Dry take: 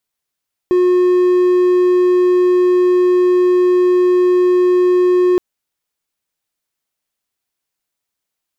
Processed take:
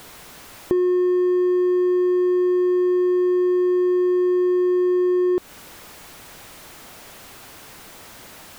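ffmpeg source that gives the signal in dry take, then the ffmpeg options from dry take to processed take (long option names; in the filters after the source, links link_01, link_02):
-f lavfi -i "aevalsrc='0.447*(1-4*abs(mod(361*t+0.25,1)-0.5))':duration=4.67:sample_rate=44100"
-af "aeval=exprs='val(0)+0.5*0.0376*sgn(val(0))':channel_layout=same,highshelf=frequency=2600:gain=-11,acompressor=threshold=-19dB:ratio=3"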